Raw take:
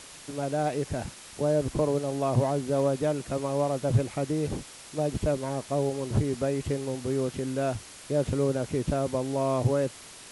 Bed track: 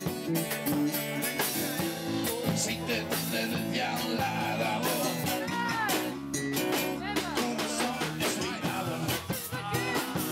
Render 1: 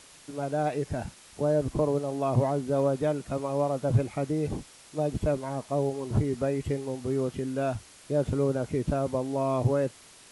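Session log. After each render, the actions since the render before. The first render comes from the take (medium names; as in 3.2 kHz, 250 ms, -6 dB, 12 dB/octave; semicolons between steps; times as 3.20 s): noise print and reduce 6 dB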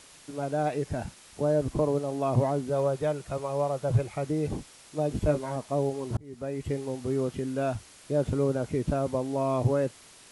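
2.69–4.26 s: peaking EQ 250 Hz -13.5 dB 0.42 oct; 5.09–5.56 s: doubling 20 ms -5.5 dB; 6.17–6.79 s: fade in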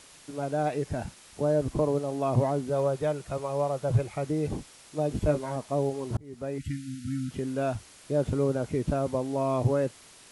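6.58–7.31 s: brick-wall FIR band-stop 320–1300 Hz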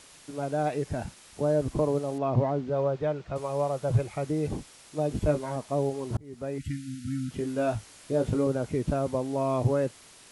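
2.18–3.36 s: distance through air 170 m; 7.37–8.47 s: doubling 18 ms -5.5 dB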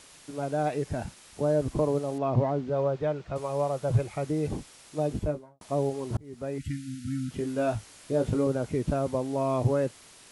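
5.04–5.61 s: studio fade out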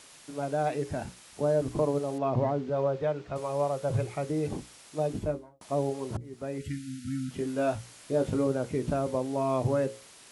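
bass shelf 81 Hz -8.5 dB; hum notches 60/120/180/240/300/360/420/480/540 Hz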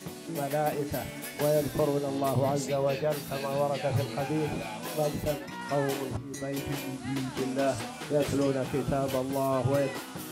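add bed track -8 dB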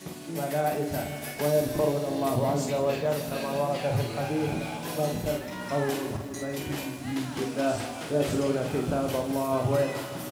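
doubling 48 ms -5.5 dB; bit-crushed delay 157 ms, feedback 80%, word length 8-bit, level -14 dB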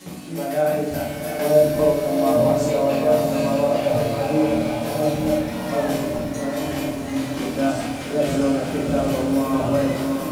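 on a send: echo that smears into a reverb 772 ms, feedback 45%, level -5 dB; on the sum: simulated room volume 300 m³, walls furnished, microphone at 2.1 m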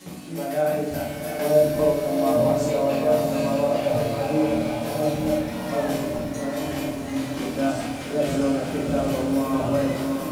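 trim -2.5 dB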